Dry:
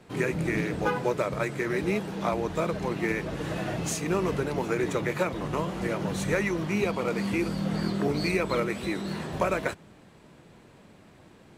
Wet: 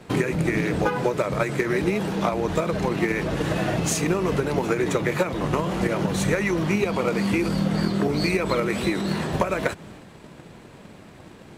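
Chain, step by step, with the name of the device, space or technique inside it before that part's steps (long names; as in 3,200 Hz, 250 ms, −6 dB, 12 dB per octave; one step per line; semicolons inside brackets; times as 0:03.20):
drum-bus smash (transient designer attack +8 dB, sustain +4 dB; downward compressor 6 to 1, threshold −25 dBFS, peak gain reduction 11 dB; soft clipping −16 dBFS, distortion −24 dB)
level +7 dB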